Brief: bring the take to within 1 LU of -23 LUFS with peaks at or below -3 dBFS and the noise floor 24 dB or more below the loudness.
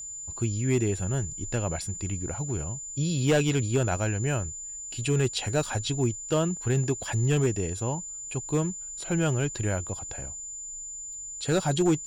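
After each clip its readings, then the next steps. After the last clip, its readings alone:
clipped samples 0.5%; clipping level -17.0 dBFS; steady tone 7.1 kHz; tone level -36 dBFS; loudness -28.5 LUFS; peak level -17.0 dBFS; loudness target -23.0 LUFS
-> clip repair -17 dBFS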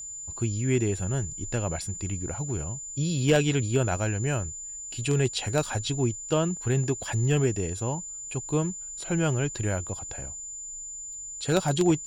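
clipped samples 0.0%; steady tone 7.1 kHz; tone level -36 dBFS
-> band-stop 7.1 kHz, Q 30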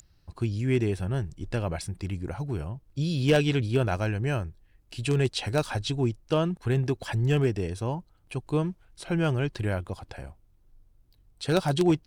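steady tone not found; loudness -28.0 LUFS; peak level -8.5 dBFS; loudness target -23.0 LUFS
-> trim +5 dB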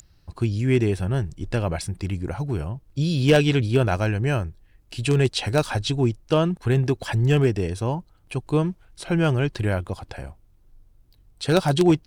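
loudness -23.0 LUFS; peak level -3.5 dBFS; noise floor -57 dBFS

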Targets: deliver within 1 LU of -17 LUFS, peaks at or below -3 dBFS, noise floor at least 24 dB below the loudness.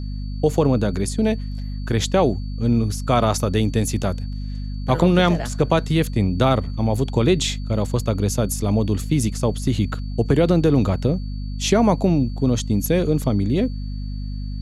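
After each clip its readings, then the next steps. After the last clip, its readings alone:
hum 50 Hz; highest harmonic 250 Hz; hum level -25 dBFS; steady tone 4.5 kHz; tone level -48 dBFS; loudness -20.5 LUFS; peak level -4.5 dBFS; loudness target -17.0 LUFS
-> hum notches 50/100/150/200/250 Hz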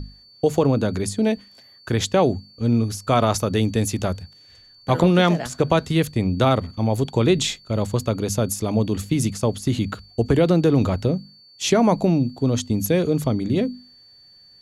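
hum not found; steady tone 4.5 kHz; tone level -48 dBFS
-> band-stop 4.5 kHz, Q 30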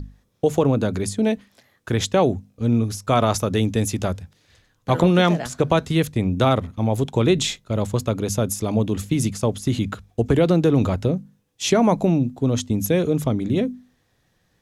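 steady tone not found; loudness -21.5 LUFS; peak level -5.0 dBFS; loudness target -17.0 LUFS
-> trim +4.5 dB; peak limiter -3 dBFS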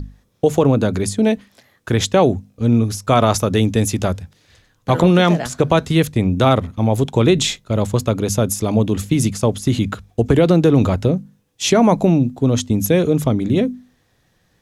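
loudness -17.0 LUFS; peak level -3.0 dBFS; noise floor -62 dBFS

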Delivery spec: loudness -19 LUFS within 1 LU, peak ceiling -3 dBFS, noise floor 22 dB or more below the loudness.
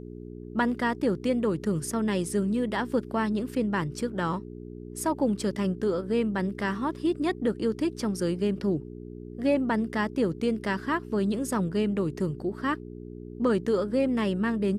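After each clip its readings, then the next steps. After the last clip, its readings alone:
hum 60 Hz; highest harmonic 420 Hz; hum level -39 dBFS; loudness -28.0 LUFS; peak level -14.5 dBFS; loudness target -19.0 LUFS
-> de-hum 60 Hz, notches 7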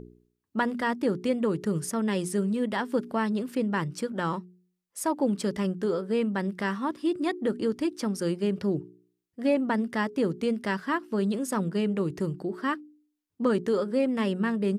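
hum not found; loudness -28.5 LUFS; peak level -14.0 dBFS; loudness target -19.0 LUFS
-> trim +9.5 dB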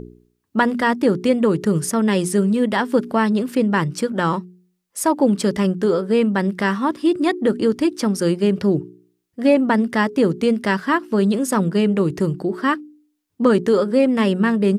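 loudness -19.0 LUFS; peak level -4.5 dBFS; noise floor -71 dBFS

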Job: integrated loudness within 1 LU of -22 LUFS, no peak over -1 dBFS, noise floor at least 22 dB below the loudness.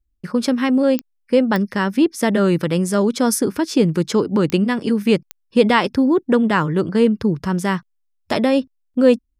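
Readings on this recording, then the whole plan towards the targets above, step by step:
clicks found 4; loudness -18.5 LUFS; peak level -2.5 dBFS; loudness target -22.0 LUFS
-> de-click; trim -3.5 dB

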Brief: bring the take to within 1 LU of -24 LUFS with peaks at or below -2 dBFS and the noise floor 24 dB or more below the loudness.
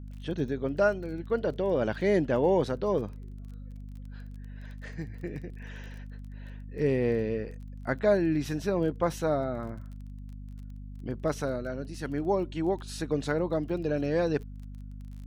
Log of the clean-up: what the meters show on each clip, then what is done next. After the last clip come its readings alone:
tick rate 24 per s; hum 50 Hz; highest harmonic 250 Hz; hum level -39 dBFS; loudness -29.5 LUFS; peak level -13.0 dBFS; loudness target -24.0 LUFS
-> de-click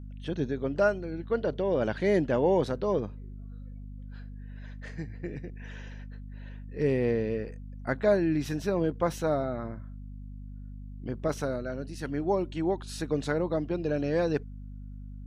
tick rate 0 per s; hum 50 Hz; highest harmonic 250 Hz; hum level -39 dBFS
-> de-hum 50 Hz, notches 5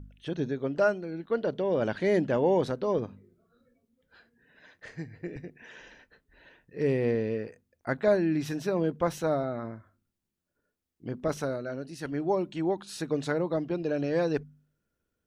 hum not found; loudness -29.5 LUFS; peak level -13.0 dBFS; loudness target -24.0 LUFS
-> trim +5.5 dB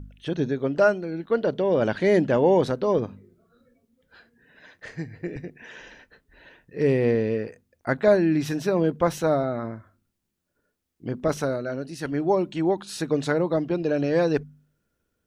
loudness -24.0 LUFS; peak level -7.5 dBFS; noise floor -78 dBFS

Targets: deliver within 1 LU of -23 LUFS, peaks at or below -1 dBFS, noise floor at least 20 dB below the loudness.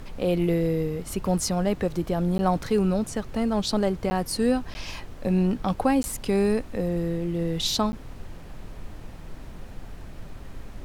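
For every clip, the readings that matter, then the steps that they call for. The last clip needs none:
dropouts 5; longest dropout 10 ms; noise floor -41 dBFS; noise floor target -46 dBFS; loudness -25.5 LUFS; peak level -10.0 dBFS; loudness target -23.0 LUFS
-> interpolate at 2.38/4.10/4.74/6.03/7.92 s, 10 ms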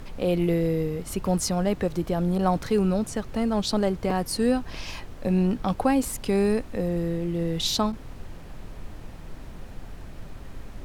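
dropouts 0; noise floor -41 dBFS; noise floor target -46 dBFS
-> noise print and reduce 6 dB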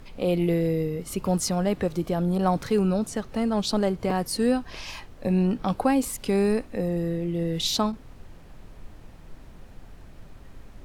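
noise floor -47 dBFS; loudness -25.5 LUFS; peak level -10.5 dBFS; loudness target -23.0 LUFS
-> trim +2.5 dB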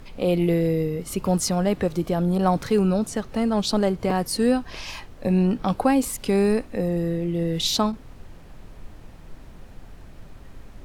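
loudness -23.0 LUFS; peak level -8.0 dBFS; noise floor -45 dBFS

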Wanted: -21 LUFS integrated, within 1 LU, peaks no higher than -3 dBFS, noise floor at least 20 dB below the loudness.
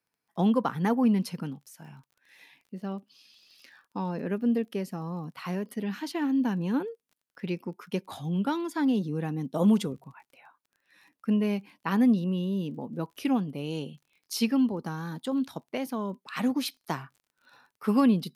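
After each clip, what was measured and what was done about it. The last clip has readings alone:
tick rate 30 per s; loudness -29.0 LUFS; peak level -13.5 dBFS; loudness target -21.0 LUFS
-> de-click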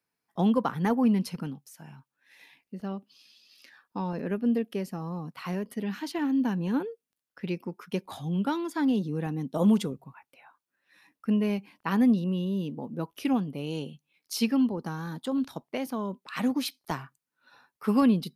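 tick rate 0.11 per s; loudness -29.0 LUFS; peak level -14.0 dBFS; loudness target -21.0 LUFS
-> trim +8 dB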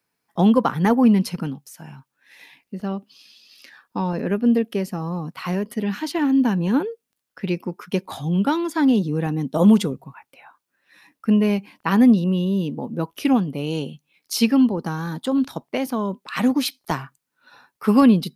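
loudness -21.0 LUFS; peak level -6.0 dBFS; noise floor -79 dBFS

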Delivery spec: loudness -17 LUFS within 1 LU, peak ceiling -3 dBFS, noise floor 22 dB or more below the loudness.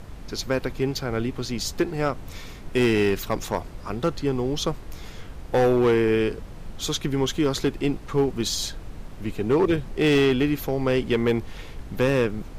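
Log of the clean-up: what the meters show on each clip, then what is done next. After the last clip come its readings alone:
clipped samples 1.2%; clipping level -14.5 dBFS; noise floor -40 dBFS; noise floor target -47 dBFS; loudness -24.5 LUFS; peak level -14.5 dBFS; loudness target -17.0 LUFS
-> clip repair -14.5 dBFS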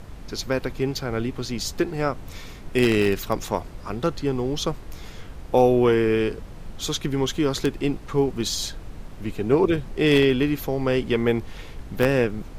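clipped samples 0.0%; noise floor -40 dBFS; noise floor target -46 dBFS
-> noise print and reduce 6 dB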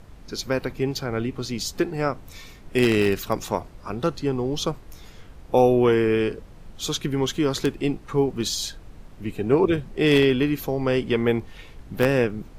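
noise floor -45 dBFS; noise floor target -46 dBFS
-> noise print and reduce 6 dB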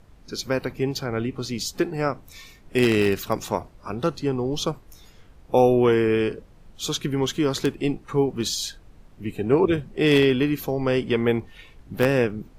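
noise floor -51 dBFS; loudness -23.5 LUFS; peak level -5.5 dBFS; loudness target -17.0 LUFS
-> trim +6.5 dB; peak limiter -3 dBFS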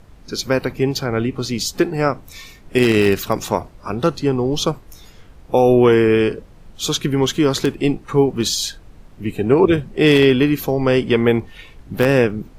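loudness -17.5 LUFS; peak level -3.0 dBFS; noise floor -45 dBFS

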